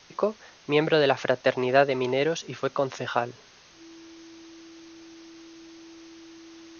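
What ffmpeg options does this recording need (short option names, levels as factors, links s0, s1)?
-af "bandreject=f=330:w=30,afwtdn=0.0035"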